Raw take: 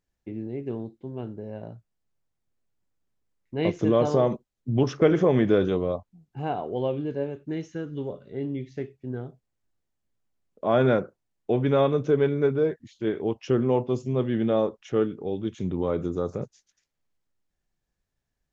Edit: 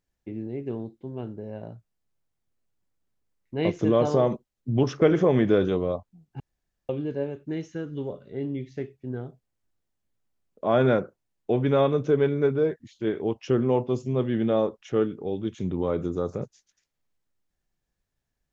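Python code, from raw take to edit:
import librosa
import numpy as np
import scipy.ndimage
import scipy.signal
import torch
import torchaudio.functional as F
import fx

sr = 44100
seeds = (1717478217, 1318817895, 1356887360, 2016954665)

y = fx.edit(x, sr, fx.room_tone_fill(start_s=6.4, length_s=0.49), tone=tone)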